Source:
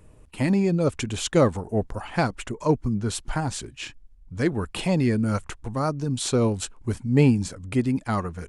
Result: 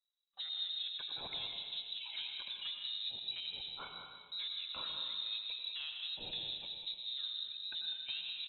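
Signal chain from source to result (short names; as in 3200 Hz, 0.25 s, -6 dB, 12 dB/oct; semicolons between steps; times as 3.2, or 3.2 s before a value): spectral noise reduction 17 dB; gate with hold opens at -42 dBFS; high shelf 2600 Hz -11.5 dB; compressor 10:1, threshold -35 dBFS, peak gain reduction 22 dB; overloaded stage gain 34 dB; echo 0.197 s -10 dB; plate-style reverb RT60 1.9 s, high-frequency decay 0.85×, pre-delay 75 ms, DRR 2.5 dB; inverted band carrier 3900 Hz; gain -5 dB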